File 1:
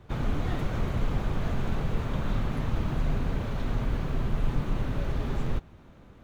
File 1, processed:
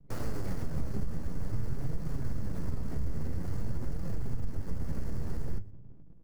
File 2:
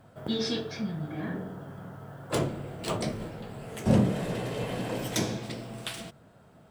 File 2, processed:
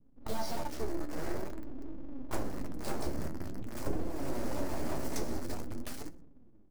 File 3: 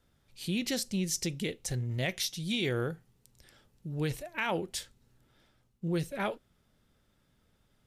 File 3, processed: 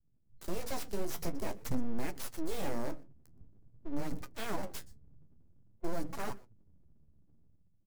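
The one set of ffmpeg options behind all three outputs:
-filter_complex "[0:a]acrossover=split=190[s0][s1];[s0]dynaudnorm=f=100:g=11:m=3.35[s2];[s1]acrusher=bits=5:mix=0:aa=0.000001[s3];[s2][s3]amix=inputs=2:normalize=0,superequalizer=7b=2.24:12b=0.398:13b=0.282,acompressor=threshold=0.0562:ratio=10,lowshelf=f=290:g=5,bandreject=f=50:t=h:w=6,bandreject=f=100:t=h:w=6,bandreject=f=150:t=h:w=6,bandreject=f=200:t=h:w=6,bandreject=f=250:t=h:w=6,bandreject=f=300:t=h:w=6,bandreject=f=350:t=h:w=6,bandreject=f=400:t=h:w=6,aecho=1:1:122:0.0668,aeval=exprs='abs(val(0))':c=same,flanger=delay=5.7:depth=9.2:regen=49:speed=0.48:shape=triangular,volume=0.841"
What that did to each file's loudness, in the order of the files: -6.5 LU, -8.0 LU, -7.0 LU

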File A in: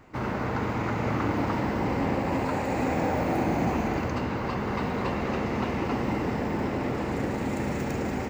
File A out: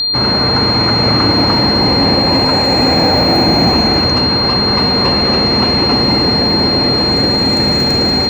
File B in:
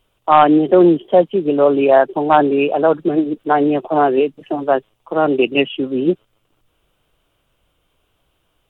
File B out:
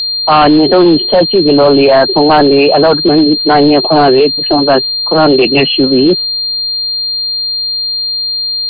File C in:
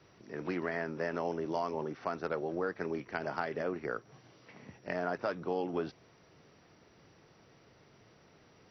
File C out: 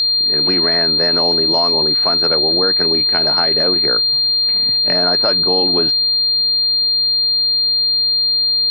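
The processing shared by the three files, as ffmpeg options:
-af "aeval=exprs='val(0)+0.0501*sin(2*PI*4200*n/s)':c=same,apsyclip=5.96,volume=0.794"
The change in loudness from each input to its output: +18.0 LU, +6.5 LU, +24.5 LU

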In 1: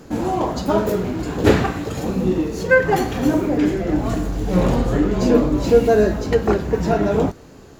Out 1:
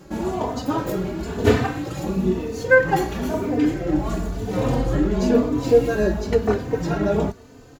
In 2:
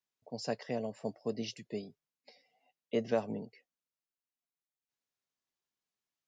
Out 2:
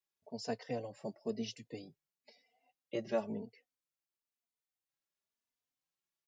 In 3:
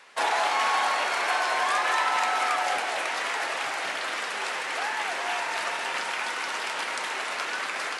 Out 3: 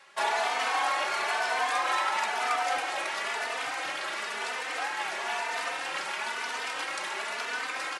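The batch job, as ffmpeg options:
-filter_complex "[0:a]asplit=2[s0][s1];[s1]adelay=3.2,afreqshift=1[s2];[s0][s2]amix=inputs=2:normalize=1"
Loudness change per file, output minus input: -3.0 LU, -3.5 LU, -3.0 LU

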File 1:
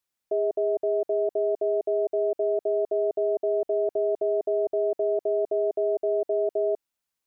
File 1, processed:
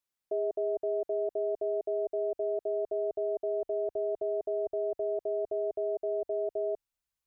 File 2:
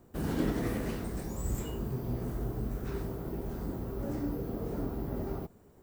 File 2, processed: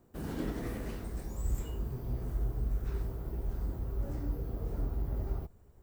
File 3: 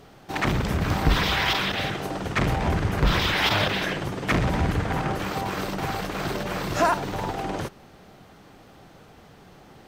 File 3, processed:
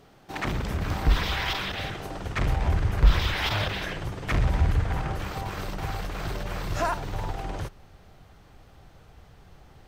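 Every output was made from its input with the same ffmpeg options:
-af "asubboost=boost=6:cutoff=88,volume=0.531"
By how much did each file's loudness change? -6.5 LU, -2.0 LU, -3.5 LU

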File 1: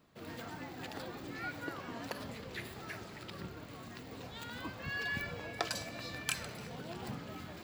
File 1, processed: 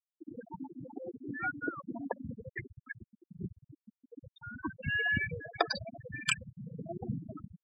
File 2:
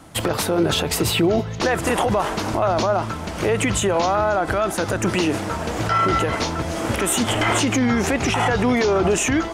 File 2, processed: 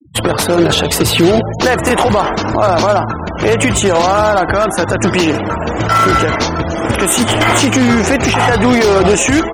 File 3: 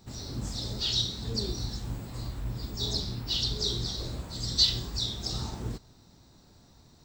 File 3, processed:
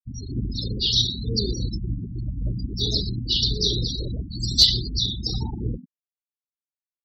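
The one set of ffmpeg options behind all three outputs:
-filter_complex "[0:a]asplit=5[s0][s1][s2][s3][s4];[s1]adelay=118,afreqshift=130,volume=0.178[s5];[s2]adelay=236,afreqshift=260,volume=0.0785[s6];[s3]adelay=354,afreqshift=390,volume=0.0343[s7];[s4]adelay=472,afreqshift=520,volume=0.0151[s8];[s0][s5][s6][s7][s8]amix=inputs=5:normalize=0,acrusher=bits=2:mode=log:mix=0:aa=0.000001,afftfilt=real='re*gte(hypot(re,im),0.0355)':imag='im*gte(hypot(re,im),0.0355)':win_size=1024:overlap=0.75,volume=2.37"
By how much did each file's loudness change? +5.0 LU, +8.0 LU, +7.0 LU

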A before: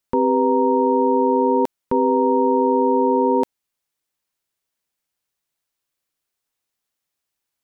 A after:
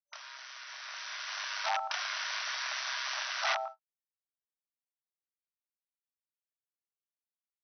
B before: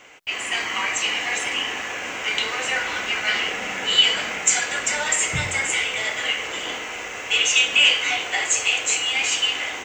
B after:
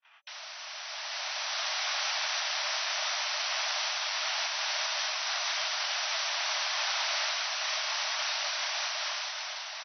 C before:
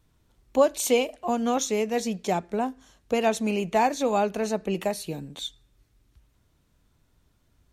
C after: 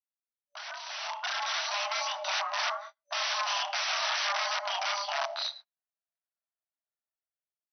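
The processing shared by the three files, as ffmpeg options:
-filter_complex "[0:a]asplit=2[s0][s1];[s1]adelay=110,lowpass=f=2400:p=1,volume=0.112,asplit=2[s2][s3];[s3]adelay=110,lowpass=f=2400:p=1,volume=0.38,asplit=2[s4][s5];[s5]adelay=110,lowpass=f=2400:p=1,volume=0.38[s6];[s0][s2][s4][s6]amix=inputs=4:normalize=0,acrossover=split=4700[s7][s8];[s8]acompressor=threshold=0.00891:ratio=4:attack=1:release=60[s9];[s7][s9]amix=inputs=2:normalize=0,agate=range=0.01:threshold=0.00501:ratio=16:detection=peak,acrusher=bits=5:mode=log:mix=0:aa=0.000001,afftfilt=real='re*lt(hypot(re,im),0.178)':imag='im*lt(hypot(re,im),0.178)':win_size=1024:overlap=0.75,flanger=delay=22.5:depth=5.9:speed=0.3,equalizer=f=1100:t=o:w=1.2:g=8,aeval=exprs='(mod(37.6*val(0)+1,2)-1)/37.6':c=same,dynaudnorm=f=220:g=11:m=4.22,afreqshift=390,afftfilt=real='re*between(b*sr/4096,580,6100)':imag='im*between(b*sr/4096,580,6100)':win_size=4096:overlap=0.75,volume=0.631"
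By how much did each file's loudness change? -16.5 LU, -9.5 LU, -4.5 LU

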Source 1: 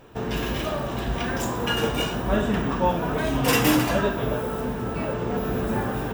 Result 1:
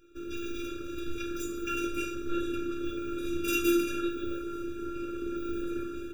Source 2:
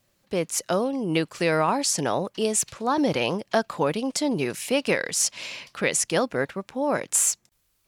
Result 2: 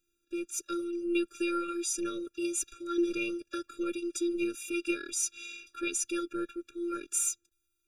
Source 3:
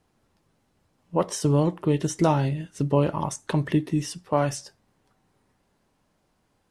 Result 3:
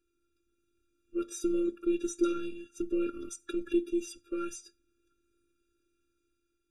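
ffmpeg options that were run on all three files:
-af "dynaudnorm=f=150:g=7:m=1.41,afftfilt=real='hypot(re,im)*cos(PI*b)':imag='0':win_size=512:overlap=0.75,afftfilt=real='re*eq(mod(floor(b*sr/1024/570),2),0)':imag='im*eq(mod(floor(b*sr/1024/570),2),0)':win_size=1024:overlap=0.75,volume=0.562"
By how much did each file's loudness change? -8.5 LU, -8.5 LU, -8.5 LU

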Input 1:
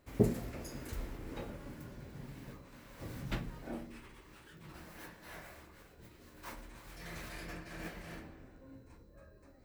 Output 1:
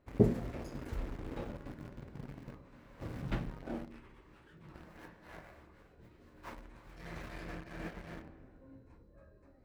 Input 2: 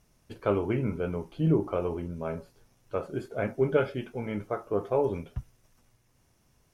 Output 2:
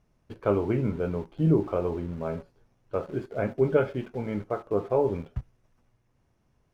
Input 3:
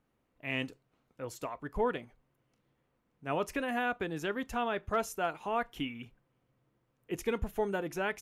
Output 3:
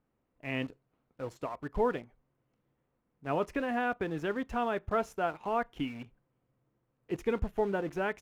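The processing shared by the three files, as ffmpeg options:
-filter_complex "[0:a]asplit=2[s0][s1];[s1]acrusher=bits=6:mix=0:aa=0.000001,volume=0.562[s2];[s0][s2]amix=inputs=2:normalize=0,lowpass=f=1600:p=1,volume=0.841"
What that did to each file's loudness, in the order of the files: +2.5 LU, +2.0 LU, +1.5 LU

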